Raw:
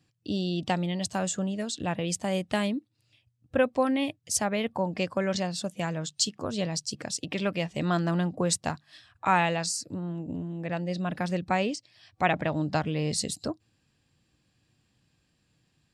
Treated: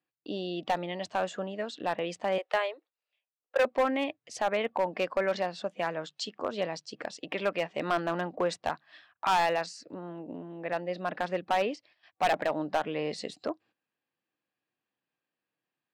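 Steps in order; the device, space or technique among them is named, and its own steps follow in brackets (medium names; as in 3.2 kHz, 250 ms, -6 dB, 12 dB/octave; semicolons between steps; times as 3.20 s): 2.38–3.65 s: steep high-pass 410 Hz 48 dB/octave; walkie-talkie (band-pass 430–2300 Hz; hard clipper -23.5 dBFS, distortion -10 dB; gate -60 dBFS, range -14 dB); trim +3.5 dB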